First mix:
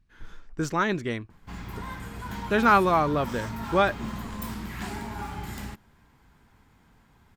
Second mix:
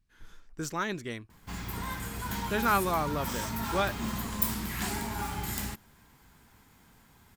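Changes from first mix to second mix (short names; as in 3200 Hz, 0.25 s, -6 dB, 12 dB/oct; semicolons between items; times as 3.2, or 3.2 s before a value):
speech -8.0 dB; master: remove LPF 2600 Hz 6 dB/oct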